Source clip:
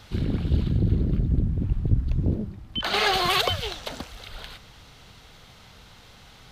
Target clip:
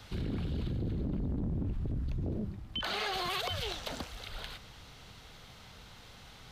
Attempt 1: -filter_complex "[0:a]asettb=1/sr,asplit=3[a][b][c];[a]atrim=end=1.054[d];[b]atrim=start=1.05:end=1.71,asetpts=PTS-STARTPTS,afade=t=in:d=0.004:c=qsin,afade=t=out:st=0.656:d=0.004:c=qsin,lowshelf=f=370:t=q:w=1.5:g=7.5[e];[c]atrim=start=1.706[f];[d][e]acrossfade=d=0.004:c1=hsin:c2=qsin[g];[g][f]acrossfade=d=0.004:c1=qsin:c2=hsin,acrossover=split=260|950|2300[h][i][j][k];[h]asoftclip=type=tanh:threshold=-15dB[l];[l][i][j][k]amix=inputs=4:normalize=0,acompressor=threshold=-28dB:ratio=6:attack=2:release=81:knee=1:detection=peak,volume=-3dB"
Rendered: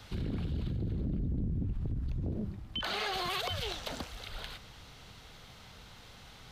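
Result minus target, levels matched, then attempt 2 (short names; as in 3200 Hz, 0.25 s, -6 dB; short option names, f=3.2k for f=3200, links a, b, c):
soft clip: distortion -6 dB
-filter_complex "[0:a]asettb=1/sr,asplit=3[a][b][c];[a]atrim=end=1.054[d];[b]atrim=start=1.05:end=1.71,asetpts=PTS-STARTPTS,afade=t=in:d=0.004:c=qsin,afade=t=out:st=0.656:d=0.004:c=qsin,lowshelf=f=370:t=q:w=1.5:g=7.5[e];[c]atrim=start=1.706[f];[d][e]acrossfade=d=0.004:c1=hsin:c2=qsin[g];[g][f]acrossfade=d=0.004:c1=qsin:c2=hsin,acrossover=split=260|950|2300[h][i][j][k];[h]asoftclip=type=tanh:threshold=-24dB[l];[l][i][j][k]amix=inputs=4:normalize=0,acompressor=threshold=-28dB:ratio=6:attack=2:release=81:knee=1:detection=peak,volume=-3dB"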